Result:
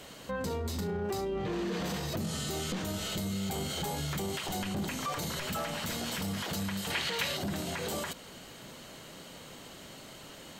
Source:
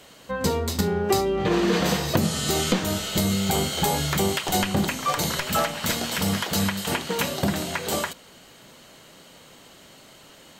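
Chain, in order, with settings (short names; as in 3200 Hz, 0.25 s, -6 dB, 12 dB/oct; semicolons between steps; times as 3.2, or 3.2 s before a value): in parallel at +2 dB: compressor, threshold -29 dBFS, peak gain reduction 12.5 dB; on the sum: soft clip -11.5 dBFS, distortion -20 dB; low shelf 340 Hz +3.5 dB; limiter -20.5 dBFS, peak gain reduction 11 dB; 6.9–7.37 ten-band EQ 250 Hz -9 dB, 2000 Hz +8 dB, 4000 Hz +7 dB; gain -7 dB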